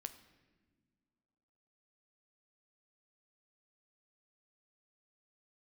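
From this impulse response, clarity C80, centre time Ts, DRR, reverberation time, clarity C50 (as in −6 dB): 14.5 dB, 9 ms, 9.0 dB, non-exponential decay, 13.0 dB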